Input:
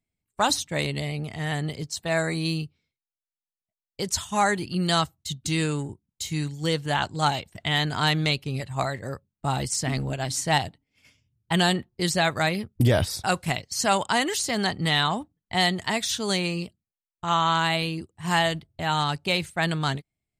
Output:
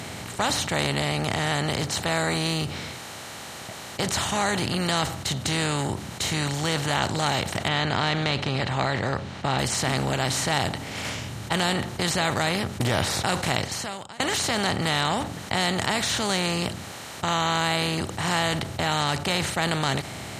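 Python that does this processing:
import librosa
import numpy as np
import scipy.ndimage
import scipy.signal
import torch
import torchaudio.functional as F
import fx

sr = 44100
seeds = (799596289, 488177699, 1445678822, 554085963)

y = fx.lowpass(x, sr, hz=4000.0, slope=24, at=(7.68, 9.59))
y = fx.edit(y, sr, fx.fade_out_span(start_s=13.65, length_s=0.55, curve='exp'), tone=tone)
y = fx.bin_compress(y, sr, power=0.4)
y = scipy.signal.sosfilt(scipy.signal.butter(2, 59.0, 'highpass', fs=sr, output='sos'), y)
y = fx.env_flatten(y, sr, amount_pct=50)
y = y * librosa.db_to_amplitude(-8.5)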